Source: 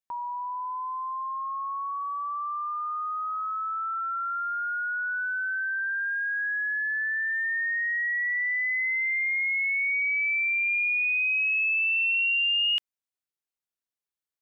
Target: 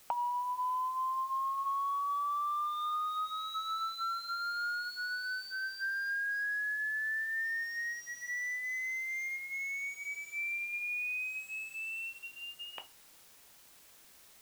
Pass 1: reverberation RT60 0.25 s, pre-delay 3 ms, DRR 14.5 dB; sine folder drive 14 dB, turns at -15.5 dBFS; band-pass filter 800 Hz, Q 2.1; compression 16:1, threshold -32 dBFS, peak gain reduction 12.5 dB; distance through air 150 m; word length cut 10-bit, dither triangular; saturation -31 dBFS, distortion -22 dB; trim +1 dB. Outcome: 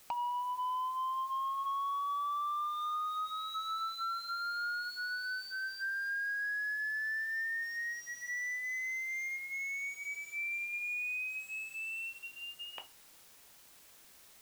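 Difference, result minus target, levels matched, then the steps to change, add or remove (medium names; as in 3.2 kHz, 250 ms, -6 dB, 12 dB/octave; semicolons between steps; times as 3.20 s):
saturation: distortion +14 dB
change: saturation -21.5 dBFS, distortion -36 dB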